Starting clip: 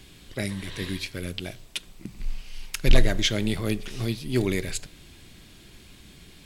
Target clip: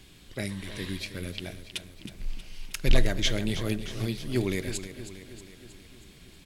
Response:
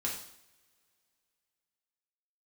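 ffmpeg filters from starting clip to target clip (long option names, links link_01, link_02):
-af "aecho=1:1:317|634|951|1268|1585|1902:0.251|0.146|0.0845|0.049|0.0284|0.0165,volume=-3.5dB"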